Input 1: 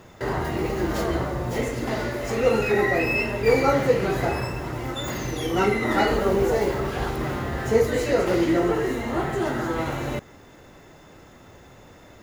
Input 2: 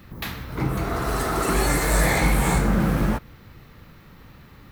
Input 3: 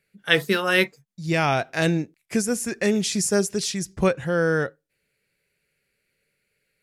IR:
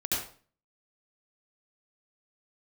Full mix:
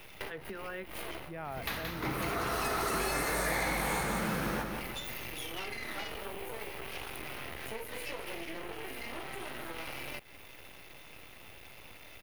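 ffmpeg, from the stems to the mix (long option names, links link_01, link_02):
-filter_complex "[0:a]firequalizer=gain_entry='entry(1700,0);entry(2400,15);entry(5800,-10);entry(9100,14)':delay=0.05:min_phase=1,aeval=exprs='max(val(0),0)':channel_layout=same,volume=-1dB[link_01];[1:a]adelay=1450,volume=-3dB,asplit=2[link_02][link_03];[link_03]volume=-7.5dB[link_04];[2:a]lowpass=1400,volume=-12dB,asplit=2[link_05][link_06];[link_06]apad=whole_len=543470[link_07];[link_01][link_07]sidechaincompress=threshold=-48dB:ratio=16:attack=36:release=213[link_08];[link_08][link_05]amix=inputs=2:normalize=0,acompressor=threshold=-35dB:ratio=5,volume=0dB[link_09];[link_04]aecho=0:1:175|350|525|700|875|1050:1|0.41|0.168|0.0689|0.0283|0.0116[link_10];[link_02][link_09][link_10]amix=inputs=3:normalize=0,equalizer=frequency=200:width=0.56:gain=-5.5,bandreject=frequency=7600:width=5.4,acrossover=split=170|1800[link_11][link_12][link_13];[link_11]acompressor=threshold=-45dB:ratio=4[link_14];[link_12]acompressor=threshold=-32dB:ratio=4[link_15];[link_13]acompressor=threshold=-36dB:ratio=4[link_16];[link_14][link_15][link_16]amix=inputs=3:normalize=0"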